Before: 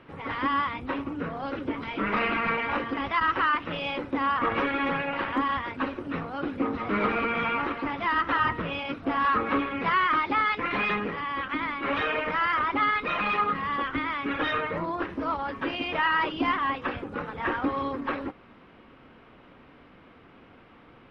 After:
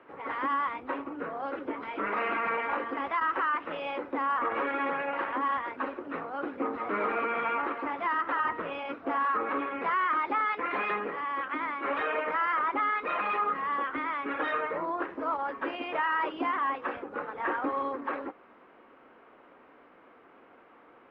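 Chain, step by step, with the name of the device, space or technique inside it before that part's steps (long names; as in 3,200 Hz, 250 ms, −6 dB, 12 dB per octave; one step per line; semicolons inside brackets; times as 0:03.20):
DJ mixer with the lows and highs turned down (three-way crossover with the lows and the highs turned down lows −21 dB, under 300 Hz, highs −15 dB, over 2,100 Hz; brickwall limiter −20.5 dBFS, peak gain reduction 5.5 dB)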